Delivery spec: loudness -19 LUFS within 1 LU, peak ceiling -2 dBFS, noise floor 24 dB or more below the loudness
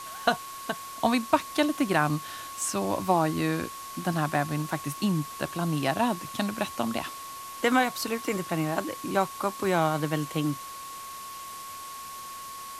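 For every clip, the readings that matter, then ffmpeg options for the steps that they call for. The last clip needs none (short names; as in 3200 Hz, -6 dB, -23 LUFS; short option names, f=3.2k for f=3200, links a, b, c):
steady tone 1100 Hz; tone level -39 dBFS; noise floor -41 dBFS; noise floor target -53 dBFS; loudness -28.5 LUFS; peak -8.0 dBFS; loudness target -19.0 LUFS
-> -af "bandreject=f=1.1k:w=30"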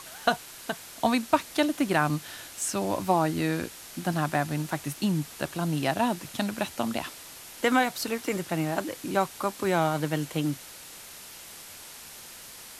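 steady tone none; noise floor -45 dBFS; noise floor target -53 dBFS
-> -af "afftdn=nr=8:nf=-45"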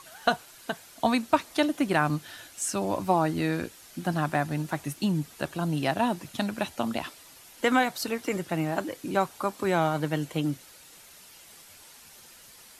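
noise floor -52 dBFS; noise floor target -53 dBFS
-> -af "afftdn=nr=6:nf=-52"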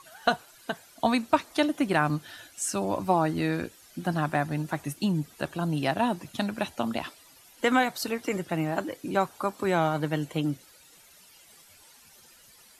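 noise floor -56 dBFS; loudness -28.5 LUFS; peak -8.5 dBFS; loudness target -19.0 LUFS
-> -af "volume=9.5dB,alimiter=limit=-2dB:level=0:latency=1"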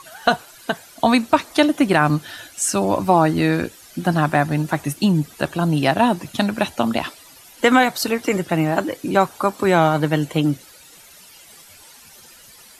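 loudness -19.5 LUFS; peak -2.0 dBFS; noise floor -46 dBFS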